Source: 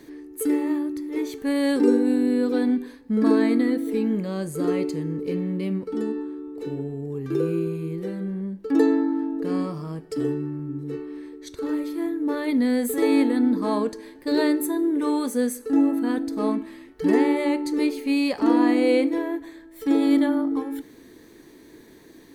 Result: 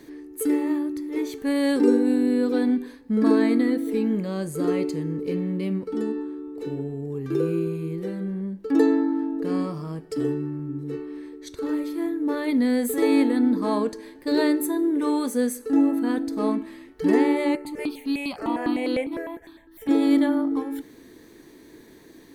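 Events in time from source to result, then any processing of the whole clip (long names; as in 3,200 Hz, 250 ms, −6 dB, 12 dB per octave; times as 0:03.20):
0:17.55–0:19.89: step-sequenced phaser 9.9 Hz 960–2,300 Hz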